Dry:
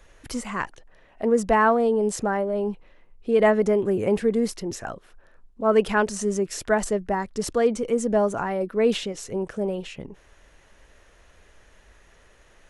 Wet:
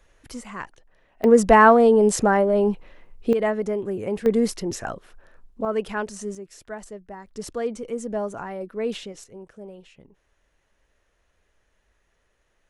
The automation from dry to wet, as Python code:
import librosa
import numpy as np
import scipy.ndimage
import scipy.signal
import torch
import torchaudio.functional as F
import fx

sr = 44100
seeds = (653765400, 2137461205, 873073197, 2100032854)

y = fx.gain(x, sr, db=fx.steps((0.0, -6.0), (1.24, 6.0), (3.33, -5.0), (4.26, 2.5), (5.65, -6.5), (6.35, -14.0), (7.27, -6.5), (9.24, -14.0)))